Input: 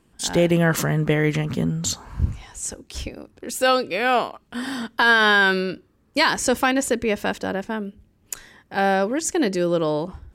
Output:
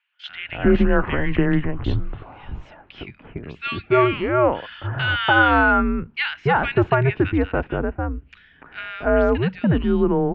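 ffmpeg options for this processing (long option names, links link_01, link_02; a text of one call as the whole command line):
ffmpeg -i in.wav -filter_complex "[0:a]acrossover=split=1900[link_01][link_02];[link_01]adelay=290[link_03];[link_03][link_02]amix=inputs=2:normalize=0,highpass=frequency=150:width_type=q:width=0.5412,highpass=frequency=150:width_type=q:width=1.307,lowpass=frequency=3100:width_type=q:width=0.5176,lowpass=frequency=3100:width_type=q:width=0.7071,lowpass=frequency=3100:width_type=q:width=1.932,afreqshift=-140,volume=3dB" out.wav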